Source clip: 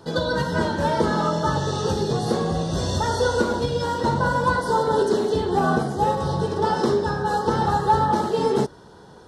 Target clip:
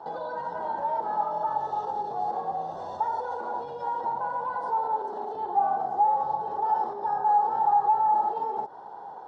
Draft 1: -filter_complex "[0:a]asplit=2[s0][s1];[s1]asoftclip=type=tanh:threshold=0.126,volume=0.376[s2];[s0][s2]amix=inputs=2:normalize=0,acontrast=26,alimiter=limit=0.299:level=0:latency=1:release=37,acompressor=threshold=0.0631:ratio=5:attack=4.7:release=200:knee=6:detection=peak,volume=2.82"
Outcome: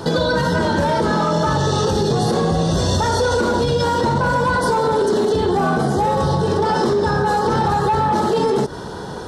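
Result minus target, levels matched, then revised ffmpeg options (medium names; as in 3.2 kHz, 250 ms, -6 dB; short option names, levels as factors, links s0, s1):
1 kHz band -5.5 dB
-filter_complex "[0:a]asplit=2[s0][s1];[s1]asoftclip=type=tanh:threshold=0.126,volume=0.376[s2];[s0][s2]amix=inputs=2:normalize=0,acontrast=26,alimiter=limit=0.299:level=0:latency=1:release=37,acompressor=threshold=0.0631:ratio=5:attack=4.7:release=200:knee=6:detection=peak,bandpass=f=810:t=q:w=8.1:csg=0,volume=2.82"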